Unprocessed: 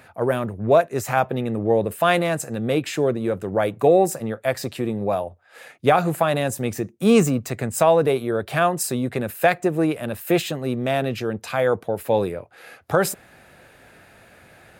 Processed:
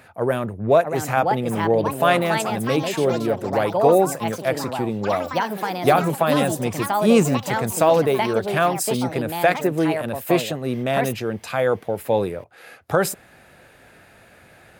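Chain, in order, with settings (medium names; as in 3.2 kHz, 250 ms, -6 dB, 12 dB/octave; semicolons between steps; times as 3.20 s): ever faster or slower copies 699 ms, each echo +4 st, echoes 3, each echo -6 dB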